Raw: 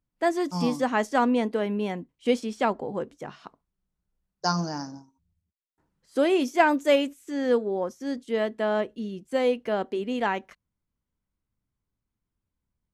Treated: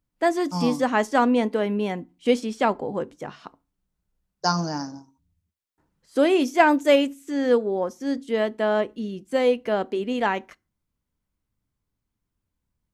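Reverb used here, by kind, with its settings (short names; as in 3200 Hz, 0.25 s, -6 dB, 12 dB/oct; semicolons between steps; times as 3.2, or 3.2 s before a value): FDN reverb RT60 0.32 s, low-frequency decay 1.45×, high-frequency decay 0.8×, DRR 20 dB; gain +3 dB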